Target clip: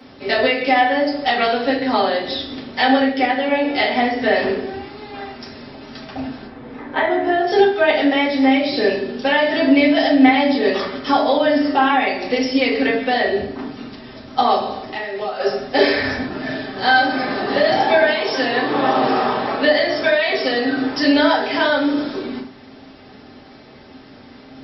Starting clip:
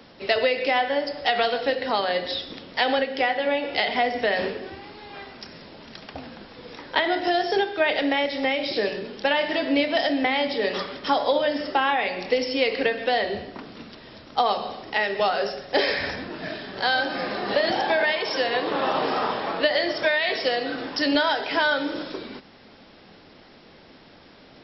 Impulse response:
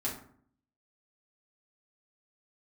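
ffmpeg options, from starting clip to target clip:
-filter_complex "[0:a]asplit=3[link_01][link_02][link_03];[link_01]afade=type=out:start_time=6.46:duration=0.02[link_04];[link_02]lowpass=2000,afade=type=in:start_time=6.46:duration=0.02,afade=type=out:start_time=7.46:duration=0.02[link_05];[link_03]afade=type=in:start_time=7.46:duration=0.02[link_06];[link_04][link_05][link_06]amix=inputs=3:normalize=0,asettb=1/sr,asplit=3[link_07][link_08][link_09];[link_07]atrim=end=14.834[link_10];[link_08]atrim=start=14.83:end=15.4,asetpts=PTS-STARTPTS,afade=type=in:duration=0.004:curve=qsin,afade=type=out:start_time=0.566:duration=0.004:curve=qsin,acompressor=threshold=-30dB:ratio=6[link_11];[link_09]atrim=start=15.396[link_12];[link_10][link_11]acrossfade=duration=0.004:curve1=hsin:curve2=qsin[link_13];[link_13][link_12]acrossfade=duration=0.004:curve1=qsin:curve2=hsin[link_14];[1:a]atrim=start_sample=2205,afade=type=out:start_time=0.18:duration=0.01,atrim=end_sample=8379[link_15];[link_14][link_15]afir=irnorm=-1:irlink=0,volume=2dB"

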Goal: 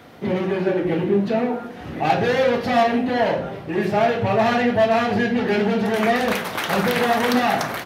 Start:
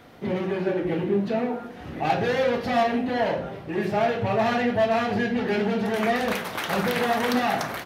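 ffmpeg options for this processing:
ffmpeg -i in.wav -af "highpass=62,volume=4.5dB" out.wav

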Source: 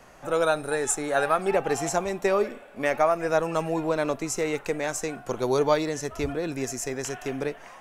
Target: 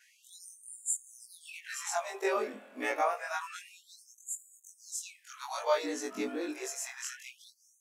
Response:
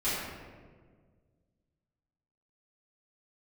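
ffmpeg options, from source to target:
-af "afftfilt=real='re':imag='-im':win_size=2048:overlap=0.75,asubboost=boost=8.5:cutoff=150,afftfilt=real='re*gte(b*sr/1024,210*pow(6900/210,0.5+0.5*sin(2*PI*0.28*pts/sr)))':imag='im*gte(b*sr/1024,210*pow(6900/210,0.5+0.5*sin(2*PI*0.28*pts/sr)))':win_size=1024:overlap=0.75"

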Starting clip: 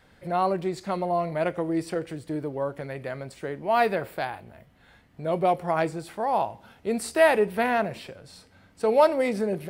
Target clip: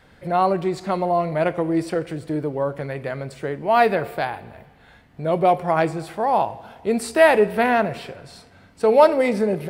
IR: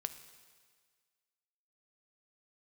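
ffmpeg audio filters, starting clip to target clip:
-filter_complex "[0:a]asplit=2[link_01][link_02];[1:a]atrim=start_sample=2205,highshelf=frequency=7300:gain=-12[link_03];[link_02][link_03]afir=irnorm=-1:irlink=0,volume=0.5dB[link_04];[link_01][link_04]amix=inputs=2:normalize=0"

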